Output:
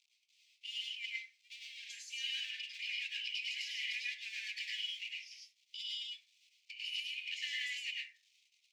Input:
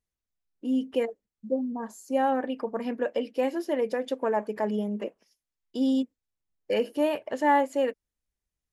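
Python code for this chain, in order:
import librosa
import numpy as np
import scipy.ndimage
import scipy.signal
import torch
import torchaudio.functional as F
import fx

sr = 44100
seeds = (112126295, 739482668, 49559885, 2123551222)

y = fx.law_mismatch(x, sr, coded='mu')
y = scipy.signal.sosfilt(scipy.signal.butter(12, 2300.0, 'highpass', fs=sr, output='sos'), y)
y = fx.over_compress(y, sr, threshold_db=-50.0, ratio=-1.0)
y = fx.air_absorb(y, sr, metres=160.0)
y = fx.rev_plate(y, sr, seeds[0], rt60_s=0.51, hf_ratio=0.4, predelay_ms=90, drr_db=-5.0)
y = y * 10.0 ** (9.5 / 20.0)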